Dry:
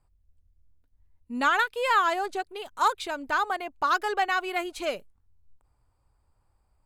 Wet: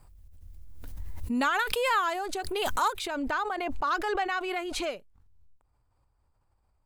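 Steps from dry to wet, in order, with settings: high shelf 8500 Hz +6 dB, from 3.07 s -8 dB; backwards sustainer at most 21 dB/s; gain -4.5 dB

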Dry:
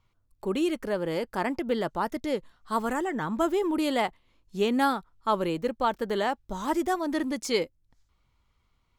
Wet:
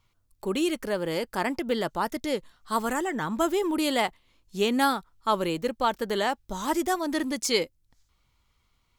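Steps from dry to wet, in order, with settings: high shelf 2700 Hz +8 dB

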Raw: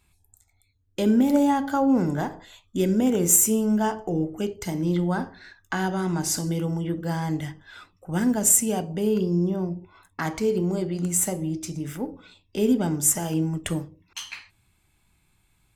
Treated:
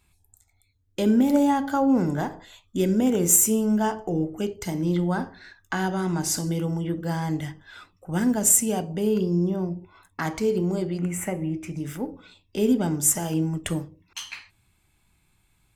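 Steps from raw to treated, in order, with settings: 10.98–11.77 resonant high shelf 3100 Hz -9.5 dB, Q 3

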